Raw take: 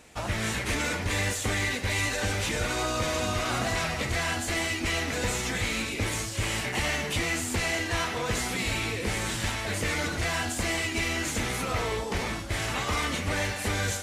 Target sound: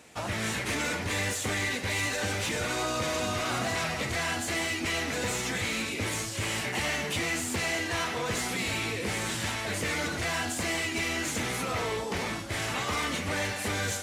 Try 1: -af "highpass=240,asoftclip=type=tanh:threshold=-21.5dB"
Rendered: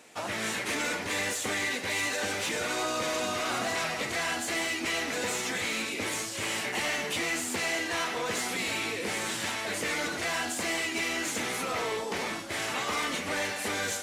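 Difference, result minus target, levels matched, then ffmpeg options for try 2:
125 Hz band -10.0 dB
-af "highpass=100,asoftclip=type=tanh:threshold=-21.5dB"

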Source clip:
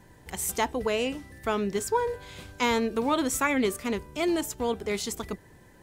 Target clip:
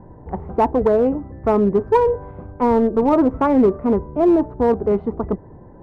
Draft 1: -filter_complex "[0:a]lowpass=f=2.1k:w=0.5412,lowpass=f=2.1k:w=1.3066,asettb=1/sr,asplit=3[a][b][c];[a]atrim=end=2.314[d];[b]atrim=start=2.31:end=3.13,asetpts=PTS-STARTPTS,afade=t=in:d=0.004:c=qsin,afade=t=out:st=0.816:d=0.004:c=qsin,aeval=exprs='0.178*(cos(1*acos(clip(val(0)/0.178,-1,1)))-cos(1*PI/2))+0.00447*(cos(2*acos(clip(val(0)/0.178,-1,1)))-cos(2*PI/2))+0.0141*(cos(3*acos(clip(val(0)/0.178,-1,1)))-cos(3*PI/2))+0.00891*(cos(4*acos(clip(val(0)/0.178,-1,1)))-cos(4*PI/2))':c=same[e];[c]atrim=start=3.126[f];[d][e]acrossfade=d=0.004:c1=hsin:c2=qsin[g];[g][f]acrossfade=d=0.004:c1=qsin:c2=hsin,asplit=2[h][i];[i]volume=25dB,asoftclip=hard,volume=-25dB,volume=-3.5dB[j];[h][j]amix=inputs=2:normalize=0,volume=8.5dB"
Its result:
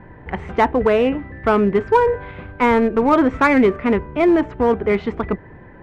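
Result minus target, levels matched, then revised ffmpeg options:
2000 Hz band +13.5 dB
-filter_complex "[0:a]lowpass=f=1k:w=0.5412,lowpass=f=1k:w=1.3066,asettb=1/sr,asplit=3[a][b][c];[a]atrim=end=2.314[d];[b]atrim=start=2.31:end=3.13,asetpts=PTS-STARTPTS,afade=t=in:d=0.004:c=qsin,afade=t=out:st=0.816:d=0.004:c=qsin,aeval=exprs='0.178*(cos(1*acos(clip(val(0)/0.178,-1,1)))-cos(1*PI/2))+0.00447*(cos(2*acos(clip(val(0)/0.178,-1,1)))-cos(2*PI/2))+0.0141*(cos(3*acos(clip(val(0)/0.178,-1,1)))-cos(3*PI/2))+0.00891*(cos(4*acos(clip(val(0)/0.178,-1,1)))-cos(4*PI/2))':c=same[e];[c]atrim=start=3.126[f];[d][e]acrossfade=d=0.004:c1=hsin:c2=qsin[g];[g][f]acrossfade=d=0.004:c1=qsin:c2=hsin,asplit=2[h][i];[i]volume=25dB,asoftclip=hard,volume=-25dB,volume=-3.5dB[j];[h][j]amix=inputs=2:normalize=0,volume=8.5dB"

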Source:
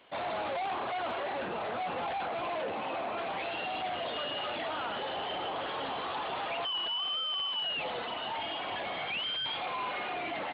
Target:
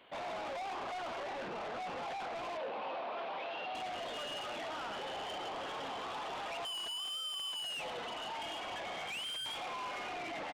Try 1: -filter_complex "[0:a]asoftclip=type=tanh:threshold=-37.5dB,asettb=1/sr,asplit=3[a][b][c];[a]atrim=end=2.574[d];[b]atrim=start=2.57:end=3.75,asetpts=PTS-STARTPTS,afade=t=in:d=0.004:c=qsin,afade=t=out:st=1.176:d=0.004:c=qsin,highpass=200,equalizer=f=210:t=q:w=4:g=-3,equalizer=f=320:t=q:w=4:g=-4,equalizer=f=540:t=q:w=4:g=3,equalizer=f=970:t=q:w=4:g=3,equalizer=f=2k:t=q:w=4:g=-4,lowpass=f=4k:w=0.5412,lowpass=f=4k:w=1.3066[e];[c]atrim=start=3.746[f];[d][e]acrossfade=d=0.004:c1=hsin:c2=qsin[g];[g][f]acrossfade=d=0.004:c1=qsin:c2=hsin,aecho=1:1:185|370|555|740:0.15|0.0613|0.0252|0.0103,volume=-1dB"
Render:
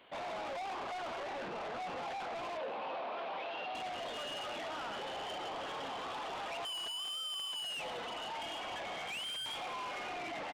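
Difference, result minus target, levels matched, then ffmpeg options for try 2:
echo 78 ms late
-filter_complex "[0:a]asoftclip=type=tanh:threshold=-37.5dB,asettb=1/sr,asplit=3[a][b][c];[a]atrim=end=2.574[d];[b]atrim=start=2.57:end=3.75,asetpts=PTS-STARTPTS,afade=t=in:d=0.004:c=qsin,afade=t=out:st=1.176:d=0.004:c=qsin,highpass=200,equalizer=f=210:t=q:w=4:g=-3,equalizer=f=320:t=q:w=4:g=-4,equalizer=f=540:t=q:w=4:g=3,equalizer=f=970:t=q:w=4:g=3,equalizer=f=2k:t=q:w=4:g=-4,lowpass=f=4k:w=0.5412,lowpass=f=4k:w=1.3066[e];[c]atrim=start=3.746[f];[d][e]acrossfade=d=0.004:c1=hsin:c2=qsin[g];[g][f]acrossfade=d=0.004:c1=qsin:c2=hsin,aecho=1:1:107|214|321|428:0.15|0.0613|0.0252|0.0103,volume=-1dB"

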